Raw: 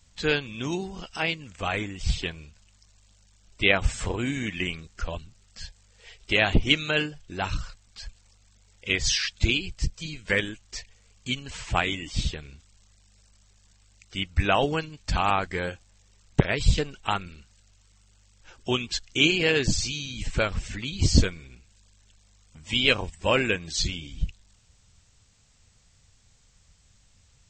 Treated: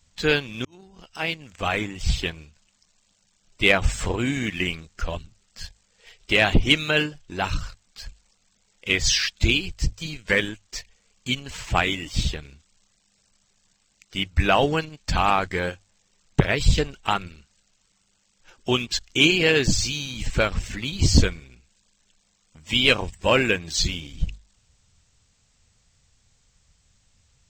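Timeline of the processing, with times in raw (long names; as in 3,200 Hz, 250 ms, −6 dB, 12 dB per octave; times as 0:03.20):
0:00.65–0:01.58: fade in
whole clip: mains-hum notches 50/100 Hz; leveller curve on the samples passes 1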